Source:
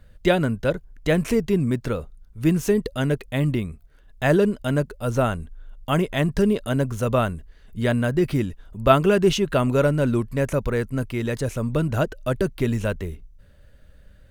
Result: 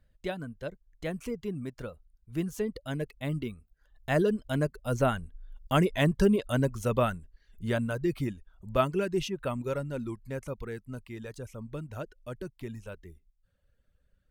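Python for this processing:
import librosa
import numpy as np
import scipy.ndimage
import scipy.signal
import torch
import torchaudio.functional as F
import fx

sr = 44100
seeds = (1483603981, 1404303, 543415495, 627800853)

y = fx.doppler_pass(x, sr, speed_mps=12, closest_m=16.0, pass_at_s=5.93)
y = fx.dereverb_blind(y, sr, rt60_s=0.69)
y = y * 10.0 ** (-2.5 / 20.0)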